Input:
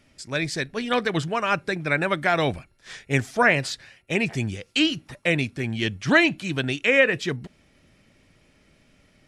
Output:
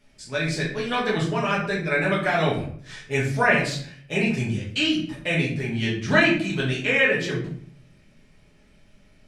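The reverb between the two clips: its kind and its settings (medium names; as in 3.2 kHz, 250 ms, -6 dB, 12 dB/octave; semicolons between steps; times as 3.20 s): simulated room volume 74 m³, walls mixed, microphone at 1.4 m; trim -6.5 dB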